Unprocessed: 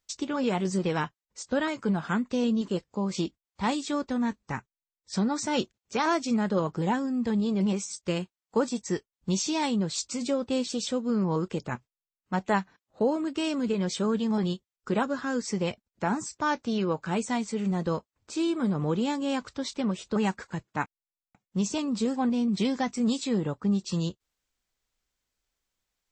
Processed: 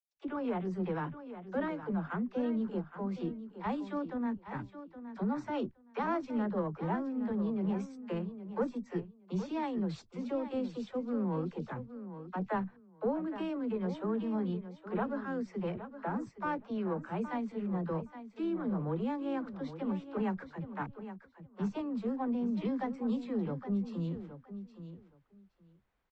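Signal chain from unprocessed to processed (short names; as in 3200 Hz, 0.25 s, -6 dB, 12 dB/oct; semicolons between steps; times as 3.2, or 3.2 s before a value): one diode to ground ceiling -18 dBFS; LPF 1700 Hz 12 dB/oct; gate -51 dBFS, range -44 dB; reverse; upward compressor, threshold -33 dBFS; reverse; dispersion lows, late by 64 ms, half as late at 310 Hz; on a send: feedback echo 0.818 s, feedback 16%, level -11.5 dB; on the sum: gain -6 dB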